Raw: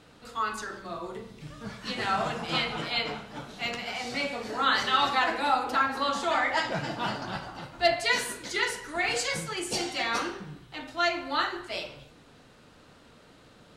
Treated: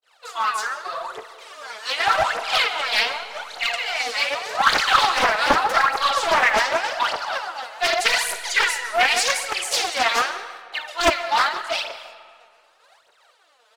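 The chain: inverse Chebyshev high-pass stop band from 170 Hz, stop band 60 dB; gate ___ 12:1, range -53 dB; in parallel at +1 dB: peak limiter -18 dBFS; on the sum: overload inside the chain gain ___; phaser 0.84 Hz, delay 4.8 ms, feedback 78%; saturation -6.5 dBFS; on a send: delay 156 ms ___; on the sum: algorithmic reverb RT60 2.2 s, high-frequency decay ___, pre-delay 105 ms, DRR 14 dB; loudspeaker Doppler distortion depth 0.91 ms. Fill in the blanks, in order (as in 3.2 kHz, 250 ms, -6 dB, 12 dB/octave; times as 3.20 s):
-56 dBFS, 16 dB, -21.5 dB, 0.6×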